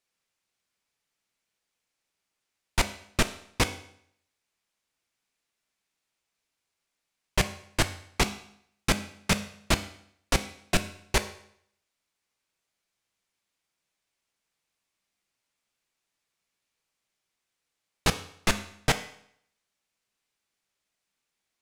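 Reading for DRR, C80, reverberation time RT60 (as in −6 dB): 9.0 dB, 16.0 dB, 0.65 s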